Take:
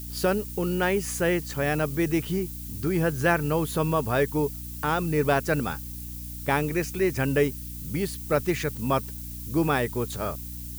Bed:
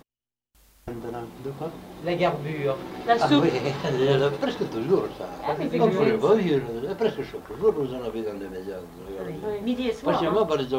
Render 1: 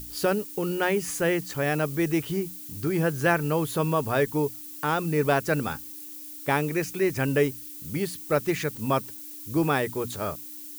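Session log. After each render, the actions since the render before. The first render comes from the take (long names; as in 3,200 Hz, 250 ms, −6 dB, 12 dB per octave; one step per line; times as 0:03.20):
mains-hum notches 60/120/180/240 Hz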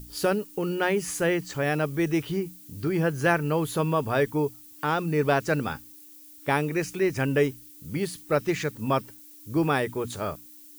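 noise reduction from a noise print 8 dB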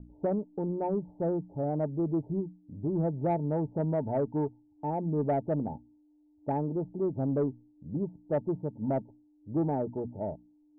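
Chebyshev low-pass with heavy ripple 910 Hz, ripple 6 dB
soft clipping −19.5 dBFS, distortion −22 dB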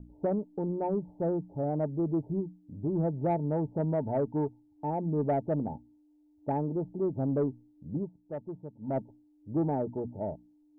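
0:07.97–0:08.98: duck −9 dB, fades 0.14 s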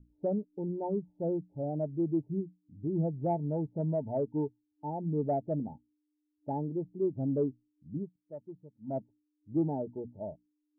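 every bin expanded away from the loudest bin 1.5 to 1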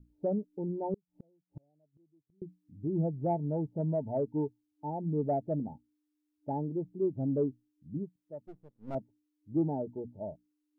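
0:00.94–0:02.42: gate with flip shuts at −36 dBFS, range −38 dB
0:08.47–0:08.95: gain on one half-wave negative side −12 dB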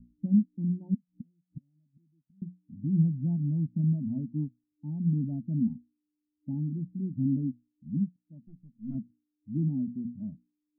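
treble cut that deepens with the level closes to 1,100 Hz, closed at −28.5 dBFS
drawn EQ curve 100 Hz 0 dB, 240 Hz +14 dB, 420 Hz −28 dB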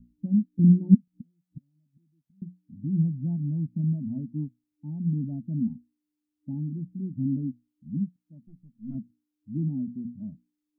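0:00.59–0:01.08: low shelf with overshoot 470 Hz +11 dB, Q 1.5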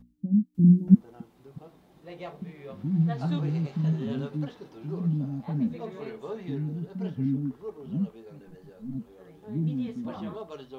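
mix in bed −17.5 dB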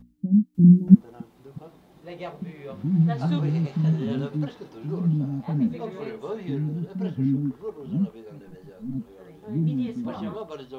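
level +4 dB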